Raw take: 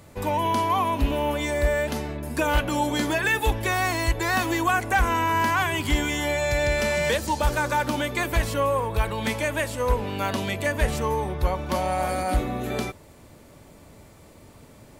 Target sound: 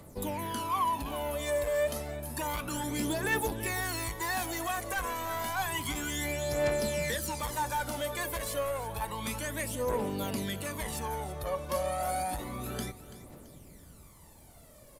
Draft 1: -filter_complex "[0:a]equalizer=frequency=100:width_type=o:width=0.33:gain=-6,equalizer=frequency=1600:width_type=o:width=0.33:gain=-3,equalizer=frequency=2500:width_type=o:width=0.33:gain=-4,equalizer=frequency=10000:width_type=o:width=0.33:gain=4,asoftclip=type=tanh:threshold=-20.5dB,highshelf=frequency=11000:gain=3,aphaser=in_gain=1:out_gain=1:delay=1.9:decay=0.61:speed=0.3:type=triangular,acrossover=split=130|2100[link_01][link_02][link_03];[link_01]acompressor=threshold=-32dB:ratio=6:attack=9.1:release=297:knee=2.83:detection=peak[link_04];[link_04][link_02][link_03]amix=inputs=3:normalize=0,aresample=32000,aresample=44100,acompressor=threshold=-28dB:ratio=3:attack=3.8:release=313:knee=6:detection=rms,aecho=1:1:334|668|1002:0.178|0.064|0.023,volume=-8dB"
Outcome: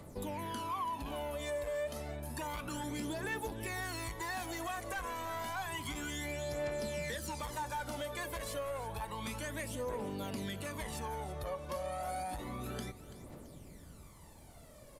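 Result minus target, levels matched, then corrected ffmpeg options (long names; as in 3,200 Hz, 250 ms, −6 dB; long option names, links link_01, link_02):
downward compressor: peak gain reduction +10 dB; 8,000 Hz band −2.0 dB
-filter_complex "[0:a]equalizer=frequency=100:width_type=o:width=0.33:gain=-6,equalizer=frequency=1600:width_type=o:width=0.33:gain=-3,equalizer=frequency=2500:width_type=o:width=0.33:gain=-4,equalizer=frequency=10000:width_type=o:width=0.33:gain=4,asoftclip=type=tanh:threshold=-20.5dB,highshelf=frequency=11000:gain=13.5,aphaser=in_gain=1:out_gain=1:delay=1.9:decay=0.61:speed=0.3:type=triangular,acrossover=split=130|2100[link_01][link_02][link_03];[link_01]acompressor=threshold=-32dB:ratio=6:attack=9.1:release=297:knee=2.83:detection=peak[link_04];[link_04][link_02][link_03]amix=inputs=3:normalize=0,aresample=32000,aresample=44100,aecho=1:1:334|668|1002:0.178|0.064|0.023,volume=-8dB"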